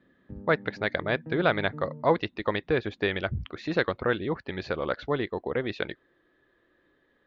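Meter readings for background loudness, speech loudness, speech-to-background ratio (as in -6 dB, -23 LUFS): -44.0 LUFS, -29.0 LUFS, 15.0 dB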